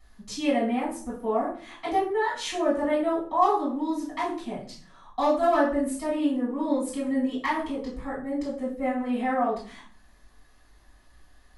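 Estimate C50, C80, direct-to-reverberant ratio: 6.0 dB, 11.0 dB, -9.0 dB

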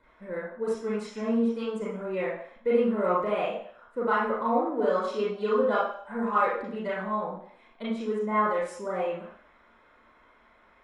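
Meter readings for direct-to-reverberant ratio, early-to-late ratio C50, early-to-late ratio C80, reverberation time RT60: -7.0 dB, 0.5 dB, 5.0 dB, 0.60 s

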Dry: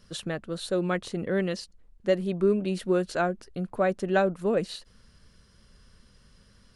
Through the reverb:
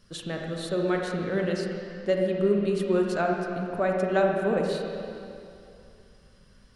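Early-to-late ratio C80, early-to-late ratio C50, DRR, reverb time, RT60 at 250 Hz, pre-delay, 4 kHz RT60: 2.5 dB, 1.0 dB, 0.0 dB, 2.6 s, 2.5 s, 30 ms, 2.4 s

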